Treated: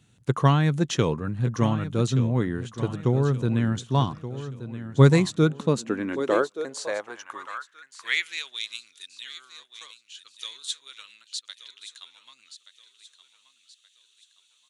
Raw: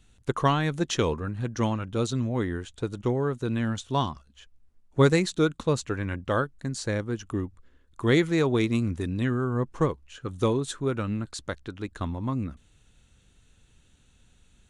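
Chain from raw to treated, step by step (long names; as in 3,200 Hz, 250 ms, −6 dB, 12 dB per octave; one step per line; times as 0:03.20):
repeating echo 1,176 ms, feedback 40%, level −12.5 dB
high-pass filter sweep 130 Hz → 3,600 Hz, 0:05.34–0:08.59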